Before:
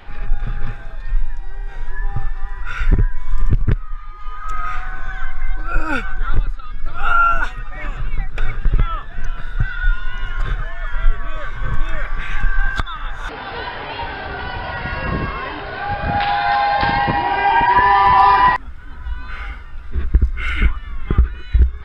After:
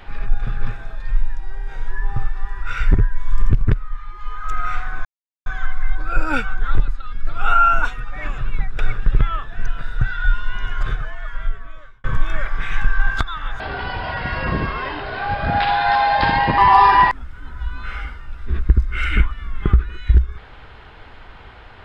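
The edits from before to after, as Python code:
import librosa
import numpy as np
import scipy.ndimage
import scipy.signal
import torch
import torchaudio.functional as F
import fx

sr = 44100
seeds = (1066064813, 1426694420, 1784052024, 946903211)

y = fx.edit(x, sr, fx.insert_silence(at_s=5.05, length_s=0.41),
    fx.fade_out_span(start_s=10.35, length_s=1.28),
    fx.cut(start_s=13.19, length_s=1.01),
    fx.cut(start_s=17.18, length_s=0.85), tone=tone)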